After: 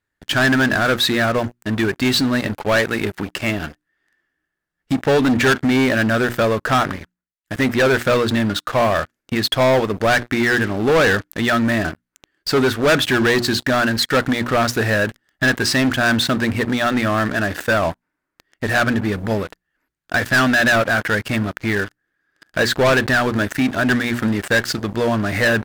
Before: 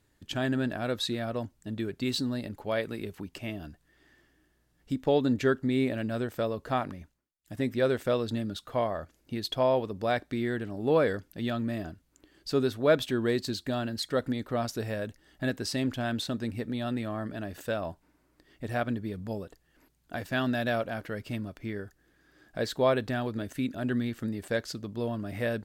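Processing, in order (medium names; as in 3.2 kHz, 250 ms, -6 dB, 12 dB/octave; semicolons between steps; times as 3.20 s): peaking EQ 1.6 kHz +11.5 dB 1.2 oct; hum notches 60/120/180/240/300/360 Hz; waveshaping leveller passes 5; trim -3.5 dB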